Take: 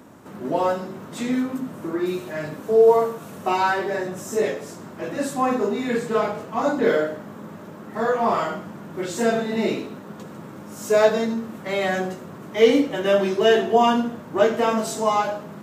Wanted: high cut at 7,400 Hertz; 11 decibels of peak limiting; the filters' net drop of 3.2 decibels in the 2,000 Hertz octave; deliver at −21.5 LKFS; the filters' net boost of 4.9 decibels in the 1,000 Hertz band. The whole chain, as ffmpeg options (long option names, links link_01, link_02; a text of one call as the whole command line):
ffmpeg -i in.wav -af "lowpass=7400,equalizer=frequency=1000:width_type=o:gain=8,equalizer=frequency=2000:width_type=o:gain=-8,volume=2.5dB,alimiter=limit=-10.5dB:level=0:latency=1" out.wav